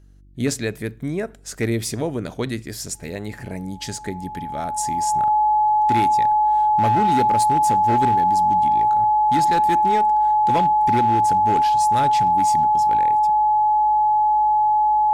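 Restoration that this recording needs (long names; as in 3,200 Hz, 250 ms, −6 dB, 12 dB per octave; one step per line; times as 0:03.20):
clipped peaks rebuilt −12.5 dBFS
hum removal 48.1 Hz, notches 7
notch filter 850 Hz, Q 30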